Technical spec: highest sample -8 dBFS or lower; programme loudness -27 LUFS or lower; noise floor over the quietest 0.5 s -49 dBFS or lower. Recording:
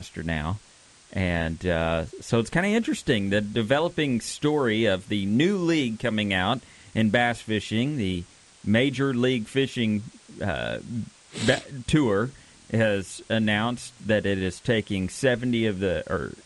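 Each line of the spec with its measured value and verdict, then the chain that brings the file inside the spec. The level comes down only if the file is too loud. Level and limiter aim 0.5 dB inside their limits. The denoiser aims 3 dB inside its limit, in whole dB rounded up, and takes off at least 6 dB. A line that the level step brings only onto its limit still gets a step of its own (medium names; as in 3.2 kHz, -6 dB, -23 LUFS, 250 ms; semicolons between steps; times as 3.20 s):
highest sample -7.0 dBFS: fail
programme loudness -25.5 LUFS: fail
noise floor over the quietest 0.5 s -54 dBFS: pass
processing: trim -2 dB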